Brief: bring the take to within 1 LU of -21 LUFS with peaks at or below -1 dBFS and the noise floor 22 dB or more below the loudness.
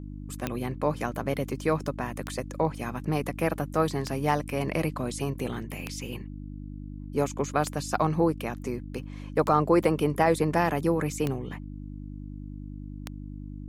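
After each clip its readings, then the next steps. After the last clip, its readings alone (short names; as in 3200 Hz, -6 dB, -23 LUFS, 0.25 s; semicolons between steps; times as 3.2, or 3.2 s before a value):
clicks 8; hum 50 Hz; harmonics up to 300 Hz; hum level -36 dBFS; loudness -28.5 LUFS; peak -9.5 dBFS; loudness target -21.0 LUFS
-> de-click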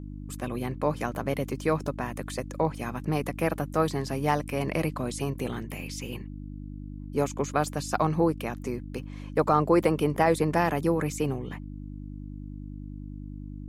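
clicks 0; hum 50 Hz; harmonics up to 300 Hz; hum level -36 dBFS
-> de-hum 50 Hz, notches 6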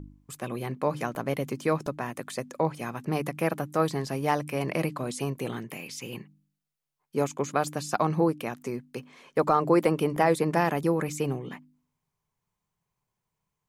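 hum none; loudness -28.5 LUFS; peak -9.5 dBFS; loudness target -21.0 LUFS
-> gain +7.5 dB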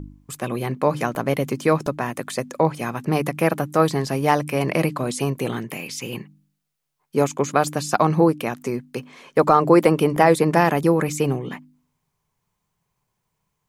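loudness -21.0 LUFS; peak -2.0 dBFS; noise floor -77 dBFS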